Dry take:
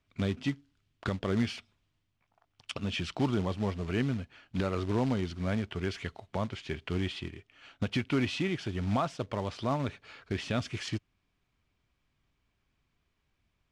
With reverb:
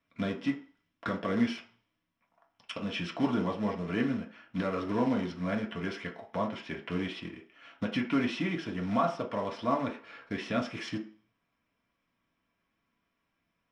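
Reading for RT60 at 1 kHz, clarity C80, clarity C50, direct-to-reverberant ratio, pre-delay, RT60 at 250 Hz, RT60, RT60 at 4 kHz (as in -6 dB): 0.50 s, 16.0 dB, 11.0 dB, -1.5 dB, 3 ms, 0.35 s, 0.45 s, 0.40 s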